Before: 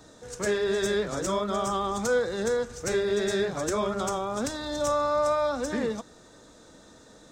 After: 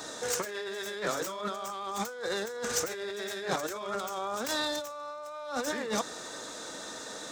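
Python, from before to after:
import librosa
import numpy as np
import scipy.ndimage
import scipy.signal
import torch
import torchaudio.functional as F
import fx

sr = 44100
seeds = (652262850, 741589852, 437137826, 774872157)

y = fx.tracing_dist(x, sr, depth_ms=0.099)
y = fx.highpass(y, sr, hz=820.0, slope=6)
y = fx.over_compress(y, sr, threshold_db=-42.0, ratio=-1.0)
y = F.gain(torch.from_numpy(y), 6.5).numpy()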